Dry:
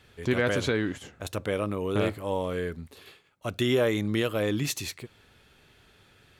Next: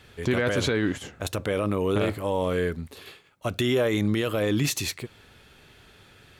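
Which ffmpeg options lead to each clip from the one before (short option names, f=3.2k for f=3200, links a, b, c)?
-af "alimiter=limit=-20.5dB:level=0:latency=1:release=18,volume=5.5dB"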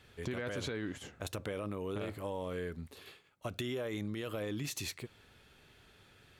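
-af "acompressor=threshold=-26dB:ratio=6,volume=-8.5dB"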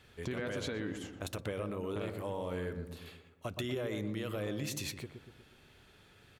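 -filter_complex "[0:a]asplit=2[a][b];[b]adelay=121,lowpass=f=1.1k:p=1,volume=-6dB,asplit=2[c][d];[d]adelay=121,lowpass=f=1.1k:p=1,volume=0.53,asplit=2[e][f];[f]adelay=121,lowpass=f=1.1k:p=1,volume=0.53,asplit=2[g][h];[h]adelay=121,lowpass=f=1.1k:p=1,volume=0.53,asplit=2[i][j];[j]adelay=121,lowpass=f=1.1k:p=1,volume=0.53,asplit=2[k][l];[l]adelay=121,lowpass=f=1.1k:p=1,volume=0.53,asplit=2[m][n];[n]adelay=121,lowpass=f=1.1k:p=1,volume=0.53[o];[a][c][e][g][i][k][m][o]amix=inputs=8:normalize=0"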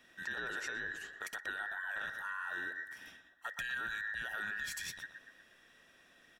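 -af "afftfilt=real='real(if(between(b,1,1012),(2*floor((b-1)/92)+1)*92-b,b),0)':imag='imag(if(between(b,1,1012),(2*floor((b-1)/92)+1)*92-b,b),0)*if(between(b,1,1012),-1,1)':win_size=2048:overlap=0.75,volume=-3dB"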